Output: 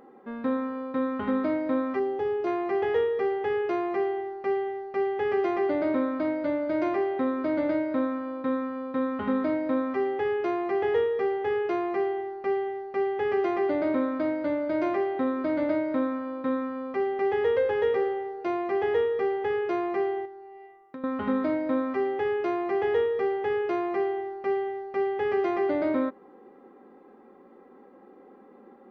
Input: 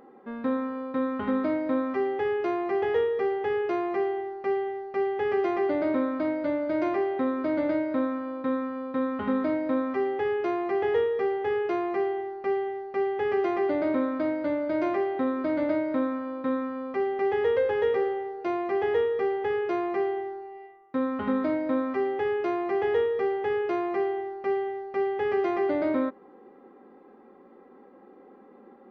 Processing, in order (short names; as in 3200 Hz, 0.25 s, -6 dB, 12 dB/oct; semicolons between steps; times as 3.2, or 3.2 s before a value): 1.99–2.47 bell 2000 Hz -9.5 dB 1.4 oct; 20.25–21.04 compressor 3:1, threshold -43 dBFS, peak gain reduction 14.5 dB